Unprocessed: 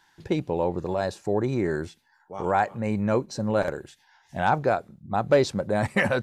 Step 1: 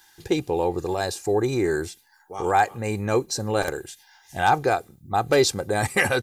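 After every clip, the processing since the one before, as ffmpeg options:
-af "aemphasis=mode=production:type=75fm,aecho=1:1:2.5:0.53,volume=1.5dB"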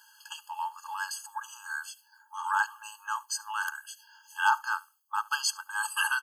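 -af "aecho=1:1:73:0.0668,afftfilt=real='re*eq(mod(floor(b*sr/1024/860),2),1)':imag='im*eq(mod(floor(b*sr/1024/860),2),1)':win_size=1024:overlap=0.75"

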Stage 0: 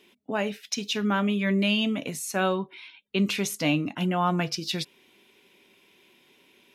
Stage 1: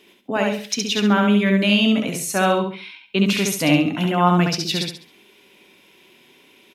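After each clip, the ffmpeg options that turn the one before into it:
-af "aecho=1:1:68|136|204|272:0.708|0.227|0.0725|0.0232,volume=5.5dB"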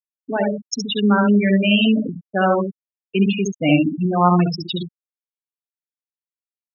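-af "afftfilt=real='re*gte(hypot(re,im),0.251)':imag='im*gte(hypot(re,im),0.251)':win_size=1024:overlap=0.75,volume=1.5dB"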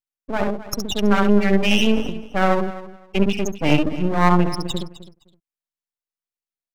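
-af "aeval=exprs='max(val(0),0)':c=same,aecho=1:1:258|516:0.158|0.0301,volume=2dB"

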